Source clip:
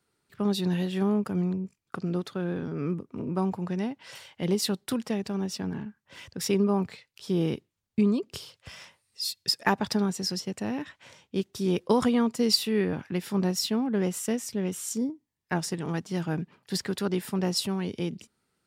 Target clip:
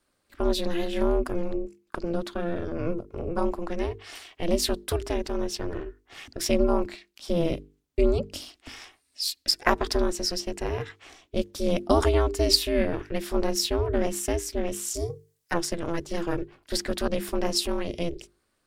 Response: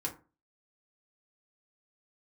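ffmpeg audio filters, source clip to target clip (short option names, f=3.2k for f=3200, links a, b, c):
-filter_complex "[0:a]asettb=1/sr,asplit=3[a][b][c];[a]atrim=end=14.944[d];[b]atrim=start=14.94:end=15.54,asetpts=PTS-STARTPTS,afade=t=in:d=0.004:c=qsin,afade=t=out:st=0.596:d=0.004:c=qsin,bass=f=250:g=-7,treble=f=4k:g=12[e];[c]atrim=start=15.536[f];[d][e]acrossfade=d=0.004:c1=hsin:c2=qsin[g];[g][f]acrossfade=d=0.004:c1=qsin:c2=hsin,aeval=exprs='val(0)*sin(2*PI*170*n/s)':c=same,bandreject=f=50:t=h:w=6,bandreject=f=100:t=h:w=6,bandreject=f=150:t=h:w=6,bandreject=f=200:t=h:w=6,bandreject=f=250:t=h:w=6,bandreject=f=300:t=h:w=6,bandreject=f=350:t=h:w=6,bandreject=f=400:t=h:w=6,bandreject=f=450:t=h:w=6,volume=5.5dB"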